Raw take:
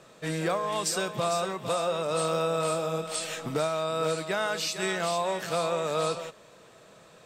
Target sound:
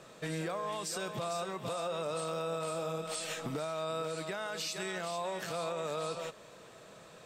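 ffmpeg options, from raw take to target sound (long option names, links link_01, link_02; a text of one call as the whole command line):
ffmpeg -i in.wav -af "alimiter=level_in=4dB:limit=-24dB:level=0:latency=1:release=178,volume=-4dB" out.wav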